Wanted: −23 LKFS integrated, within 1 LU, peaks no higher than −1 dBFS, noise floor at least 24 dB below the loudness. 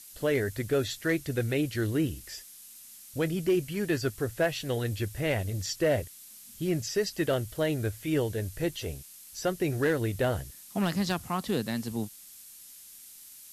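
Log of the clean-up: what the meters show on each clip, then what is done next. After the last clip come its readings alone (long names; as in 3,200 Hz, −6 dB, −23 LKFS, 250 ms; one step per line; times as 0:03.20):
share of clipped samples 0.3%; peaks flattened at −19.0 dBFS; background noise floor −50 dBFS; target noise floor −55 dBFS; integrated loudness −30.5 LKFS; sample peak −19.0 dBFS; target loudness −23.0 LKFS
→ clipped peaks rebuilt −19 dBFS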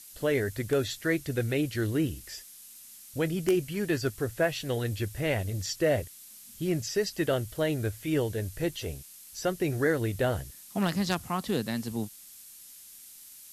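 share of clipped samples 0.0%; background noise floor −50 dBFS; target noise floor −54 dBFS
→ noise reduction from a noise print 6 dB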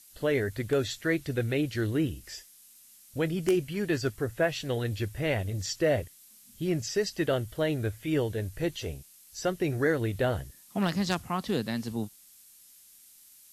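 background noise floor −56 dBFS; integrated loudness −30.0 LKFS; sample peak −10.0 dBFS; target loudness −23.0 LKFS
→ level +7 dB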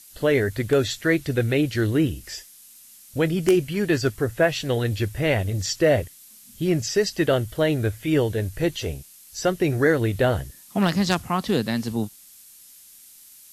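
integrated loudness −23.0 LKFS; sample peak −3.0 dBFS; background noise floor −49 dBFS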